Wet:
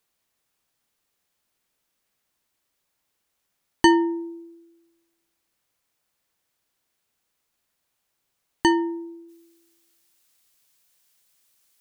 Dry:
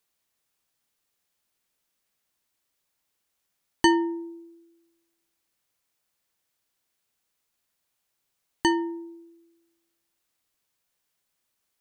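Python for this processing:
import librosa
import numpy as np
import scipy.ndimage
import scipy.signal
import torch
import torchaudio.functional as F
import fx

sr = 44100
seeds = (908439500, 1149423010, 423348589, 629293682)

y = fx.high_shelf(x, sr, hz=2500.0, db=fx.steps((0.0, -3.0), (9.28, 9.5)))
y = F.gain(torch.from_numpy(y), 4.0).numpy()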